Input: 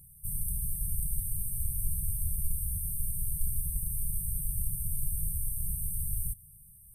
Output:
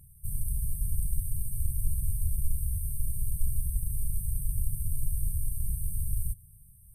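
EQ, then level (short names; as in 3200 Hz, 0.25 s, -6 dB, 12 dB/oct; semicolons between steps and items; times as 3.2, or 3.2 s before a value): bell 160 Hz -8 dB 0.3 oct; high shelf 4900 Hz -10.5 dB; +4.5 dB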